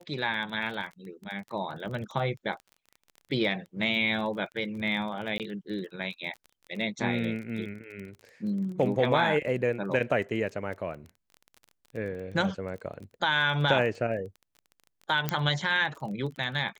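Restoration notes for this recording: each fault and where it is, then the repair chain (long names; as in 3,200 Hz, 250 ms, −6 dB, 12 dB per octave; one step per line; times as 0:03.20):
surface crackle 23 per second −37 dBFS
0:05.38–0:05.40: drop-out 18 ms
0:15.29: click −11 dBFS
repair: click removal
repair the gap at 0:05.38, 18 ms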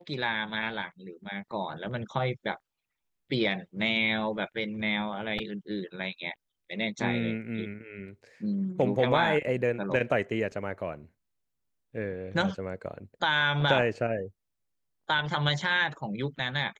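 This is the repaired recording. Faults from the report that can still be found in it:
none of them is left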